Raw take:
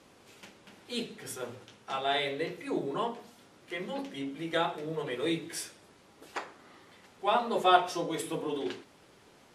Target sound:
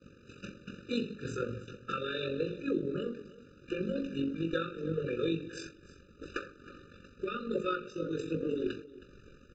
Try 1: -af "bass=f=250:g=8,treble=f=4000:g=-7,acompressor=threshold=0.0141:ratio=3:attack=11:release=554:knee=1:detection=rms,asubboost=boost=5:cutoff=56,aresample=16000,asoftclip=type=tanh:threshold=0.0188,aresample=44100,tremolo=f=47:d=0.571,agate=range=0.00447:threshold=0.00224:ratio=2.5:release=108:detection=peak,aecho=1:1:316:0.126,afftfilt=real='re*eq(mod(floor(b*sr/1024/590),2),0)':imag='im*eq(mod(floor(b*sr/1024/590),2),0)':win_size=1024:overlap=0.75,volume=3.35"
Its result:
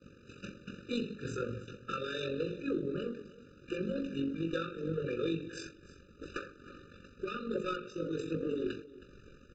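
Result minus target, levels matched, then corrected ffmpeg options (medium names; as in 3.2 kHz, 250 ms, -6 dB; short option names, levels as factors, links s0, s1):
saturation: distortion +17 dB
-af "bass=f=250:g=8,treble=f=4000:g=-7,acompressor=threshold=0.0141:ratio=3:attack=11:release=554:knee=1:detection=rms,asubboost=boost=5:cutoff=56,aresample=16000,asoftclip=type=tanh:threshold=0.0708,aresample=44100,tremolo=f=47:d=0.571,agate=range=0.00447:threshold=0.00224:ratio=2.5:release=108:detection=peak,aecho=1:1:316:0.126,afftfilt=real='re*eq(mod(floor(b*sr/1024/590),2),0)':imag='im*eq(mod(floor(b*sr/1024/590),2),0)':win_size=1024:overlap=0.75,volume=3.35"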